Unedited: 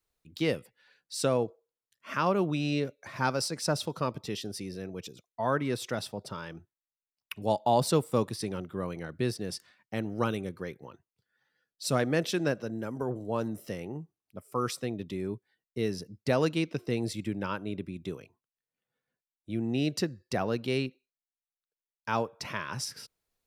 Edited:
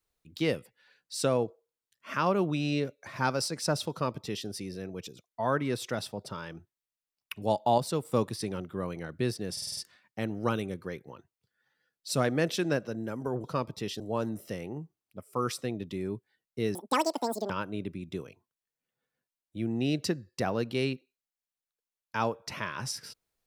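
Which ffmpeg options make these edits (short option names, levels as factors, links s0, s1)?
-filter_complex "[0:a]asplit=12[s0][s1][s2][s3][s4][s5][s6][s7][s8][s9][s10][s11];[s0]atrim=end=7.782[s12];[s1]atrim=start=7.778:end=8.052,asetpts=PTS-STARTPTS,volume=0.531[s13];[s2]atrim=start=8.048:end=9.572[s14];[s3]atrim=start=9.518:end=9.572[s15];[s4]atrim=start=9.518:end=9.572[s16];[s5]atrim=start=9.518:end=9.572[s17];[s6]atrim=start=9.518:end=9.572[s18];[s7]atrim=start=9.518:end=13.192[s19];[s8]atrim=start=3.908:end=4.472[s20];[s9]atrim=start=13.188:end=15.944[s21];[s10]atrim=start=15.94:end=17.43,asetpts=PTS-STARTPTS,asetrate=87759,aresample=44100[s22];[s11]atrim=start=17.426[s23];[s12][s13]acrossfade=d=0.004:c1=hsin:c2=hsin[s24];[s24][s14]acrossfade=d=0.004:c1=hsin:c2=hsin[s25];[s25][s15]acrossfade=d=0.004:c1=hsin:c2=hsin[s26];[s26][s16]acrossfade=d=0.004:c1=hsin:c2=hsin[s27];[s27][s17]acrossfade=d=0.004:c1=hsin:c2=hsin[s28];[s28][s18]acrossfade=d=0.004:c1=hsin:c2=hsin[s29];[s29][s19]acrossfade=d=0.004:c1=hsin:c2=hsin[s30];[s30][s20]acrossfade=d=0.004:c1=hsin:c2=hsin[s31];[s31][s21]acrossfade=d=0.004:c1=hsin:c2=hsin[s32];[s32][s22]acrossfade=d=0.004:c1=hsin:c2=hsin[s33];[s33][s23]acrossfade=d=0.004:c1=hsin:c2=hsin"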